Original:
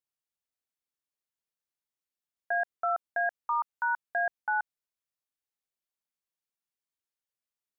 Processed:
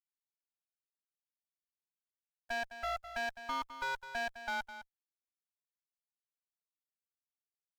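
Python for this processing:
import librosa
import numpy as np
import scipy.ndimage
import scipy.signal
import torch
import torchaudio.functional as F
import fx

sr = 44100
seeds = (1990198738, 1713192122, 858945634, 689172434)

p1 = fx.spec_gate(x, sr, threshold_db=-15, keep='strong')
p2 = fx.quant_dither(p1, sr, seeds[0], bits=10, dither='none')
p3 = fx.clip_asym(p2, sr, top_db=-38.0, bottom_db=-27.0)
p4 = p3 + fx.echo_single(p3, sr, ms=208, db=-12.0, dry=0)
y = p4 * librosa.db_to_amplitude(-2.5)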